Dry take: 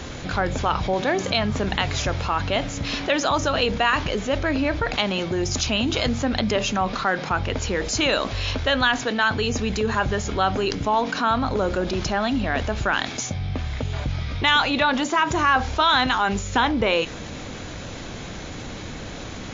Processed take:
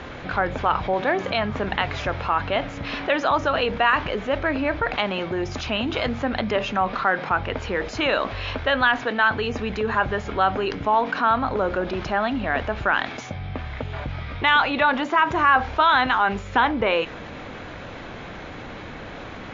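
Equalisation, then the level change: low-pass 2.2 kHz 12 dB/octave; bass shelf 400 Hz -9 dB; +3.5 dB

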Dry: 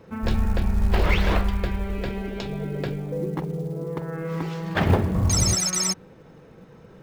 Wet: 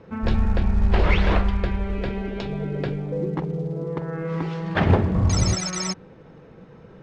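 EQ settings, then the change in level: distance through air 120 m; +2.0 dB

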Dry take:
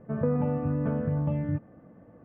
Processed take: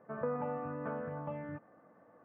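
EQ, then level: band-pass filter 1.2 kHz, Q 1.1; +1.0 dB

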